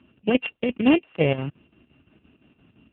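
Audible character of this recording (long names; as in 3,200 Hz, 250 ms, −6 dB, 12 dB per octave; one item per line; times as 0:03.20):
a buzz of ramps at a fixed pitch in blocks of 16 samples
chopped level 5.8 Hz, depth 60%, duty 70%
AMR narrowband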